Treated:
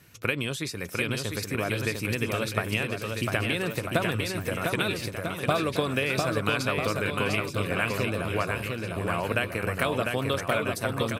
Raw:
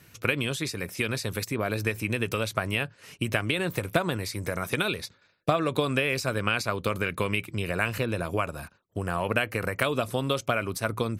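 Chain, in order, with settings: bouncing-ball echo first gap 700 ms, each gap 0.85×, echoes 5; trim -1.5 dB

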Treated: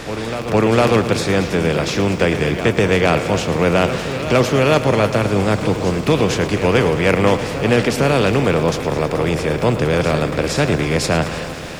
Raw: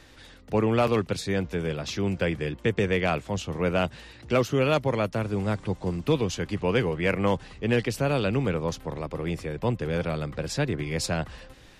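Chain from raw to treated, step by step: spectral levelling over time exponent 0.6; reverse echo 456 ms -11 dB; bit-crushed delay 108 ms, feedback 80%, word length 8-bit, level -13.5 dB; trim +6 dB

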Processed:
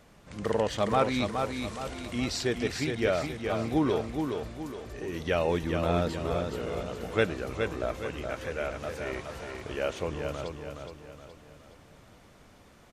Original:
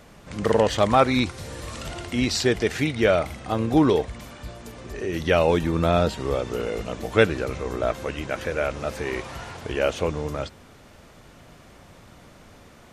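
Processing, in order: feedback delay 419 ms, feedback 43%, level -5.5 dB; trim -8 dB

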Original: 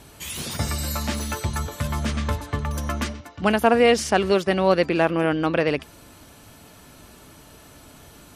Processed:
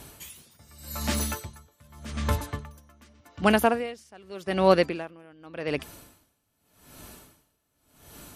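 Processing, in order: treble shelf 11 kHz +11 dB; logarithmic tremolo 0.85 Hz, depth 30 dB

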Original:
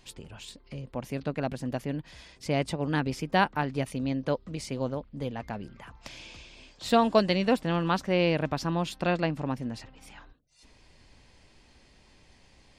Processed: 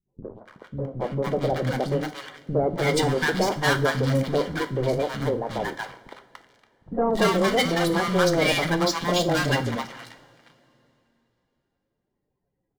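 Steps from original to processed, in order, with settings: coarse spectral quantiser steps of 30 dB; level-controlled noise filter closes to 760 Hz, open at -24 dBFS; bass shelf 100 Hz -11 dB; hum notches 50/100/150/200/250/300 Hz; waveshaping leveller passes 5; Butterworth band-stop 2.6 kHz, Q 7.7; three bands offset in time lows, mids, highs 60/290 ms, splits 250/930 Hz; on a send at -8 dB: reverberation, pre-delay 3 ms; on the sum: trim -4.5 dB

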